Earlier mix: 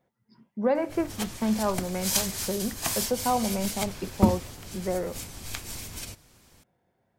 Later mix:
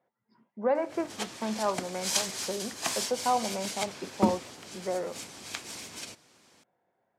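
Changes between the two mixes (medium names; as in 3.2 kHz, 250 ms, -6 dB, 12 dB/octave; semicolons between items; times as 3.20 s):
speech: add band-pass filter 940 Hz, Q 0.61; background: add band-pass 240–7900 Hz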